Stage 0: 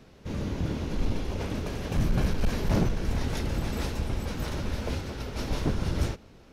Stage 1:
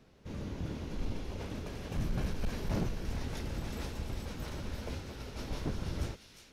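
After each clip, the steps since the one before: feedback echo behind a high-pass 354 ms, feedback 46%, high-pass 2.4 kHz, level -6 dB; trim -8.5 dB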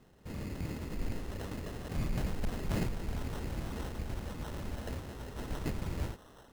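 sample-and-hold 19×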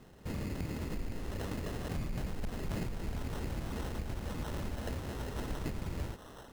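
compression, threshold -39 dBFS, peak gain reduction 10.5 dB; trim +5.5 dB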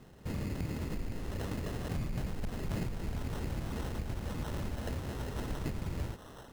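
peaking EQ 120 Hz +3 dB 1.2 oct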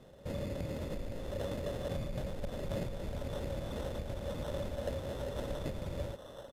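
small resonant body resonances 560/3500 Hz, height 17 dB, ringing for 45 ms; resampled via 32 kHz; trim -3.5 dB

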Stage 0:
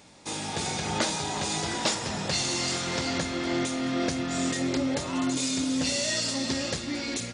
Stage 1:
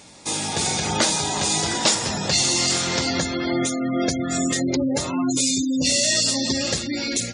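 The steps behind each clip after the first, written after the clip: treble shelf 5.7 kHz +8.5 dB; spectral gate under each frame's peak -20 dB strong; trim +5.5 dB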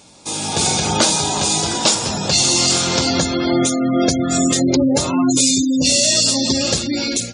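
peaking EQ 1.9 kHz -10 dB 0.32 oct; level rider gain up to 8 dB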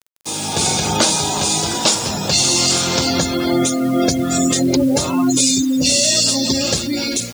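bit crusher 6-bit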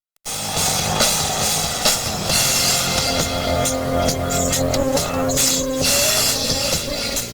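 comb filter that takes the minimum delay 1.5 ms; frequency-shifting echo 398 ms, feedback 50%, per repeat -120 Hz, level -15 dB; Opus 64 kbps 48 kHz

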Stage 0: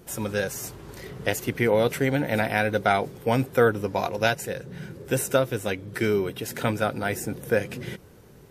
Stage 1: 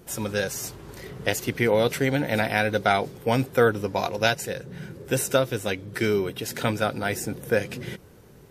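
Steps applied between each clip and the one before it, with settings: dynamic bell 4.6 kHz, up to +5 dB, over -44 dBFS, Q 1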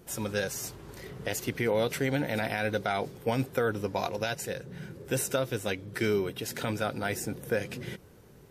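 peak limiter -13 dBFS, peak gain reduction 9 dB; trim -4 dB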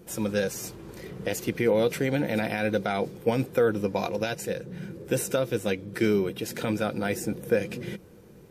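small resonant body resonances 200/330/480/2400 Hz, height 8 dB, ringing for 50 ms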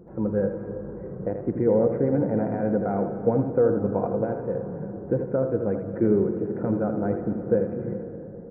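Gaussian low-pass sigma 8 samples; delay 80 ms -7.5 dB; algorithmic reverb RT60 4.1 s, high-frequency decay 0.3×, pre-delay 110 ms, DRR 9.5 dB; trim +3 dB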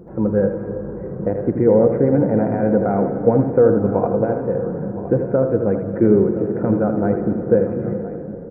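delay 1015 ms -14.5 dB; trim +7 dB

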